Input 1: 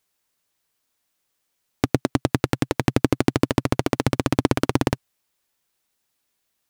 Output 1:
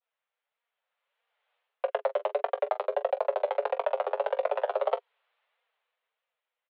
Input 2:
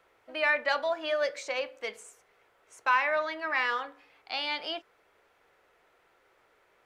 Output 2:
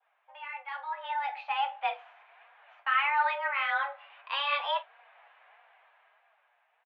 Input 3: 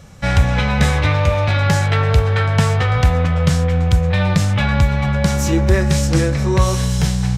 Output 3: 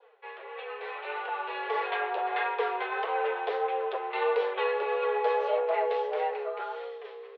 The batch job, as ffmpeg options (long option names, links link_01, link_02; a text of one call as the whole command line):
ffmpeg -i in.wav -filter_complex "[0:a]aeval=exprs='0.501*(abs(mod(val(0)/0.501+3,4)-2)-1)':channel_layout=same,flanger=delay=4.3:depth=5.1:regen=18:speed=1.6:shape=sinusoidal,areverse,acompressor=threshold=-35dB:ratio=5,areverse,highpass=frequency=180:width_type=q:width=0.5412,highpass=frequency=180:width_type=q:width=1.307,lowpass=frequency=3200:width_type=q:width=0.5176,lowpass=frequency=3200:width_type=q:width=0.7071,lowpass=frequency=3200:width_type=q:width=1.932,afreqshift=280,aemphasis=mode=reproduction:type=50fm,asplit=2[link_01][link_02];[link_02]aecho=0:1:19|43:0.211|0.168[link_03];[link_01][link_03]amix=inputs=2:normalize=0,dynaudnorm=framelen=250:gausssize=11:maxgain=15dB,adynamicequalizer=threshold=0.0112:dfrequency=2100:dqfactor=1.1:tfrequency=2100:tqfactor=1.1:attack=5:release=100:ratio=0.375:range=2.5:mode=cutabove:tftype=bell,volume=-3dB" out.wav